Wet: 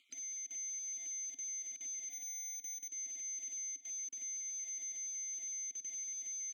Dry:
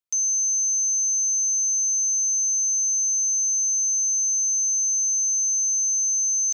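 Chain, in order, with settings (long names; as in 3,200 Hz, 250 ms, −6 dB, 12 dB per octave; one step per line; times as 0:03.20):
time-frequency cells dropped at random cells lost 26%
in parallel at −4 dB: bit-depth reduction 6 bits, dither none
on the sum: brickwall limiter −25.5 dBFS, peak gain reduction 10.5 dB
single-tap delay 325 ms −13.5 dB
upward compression, threshold −43 dBFS
formant filter i
0:02.10–0:02.89: linearly interpolated sample-rate reduction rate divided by 2×
level +10 dB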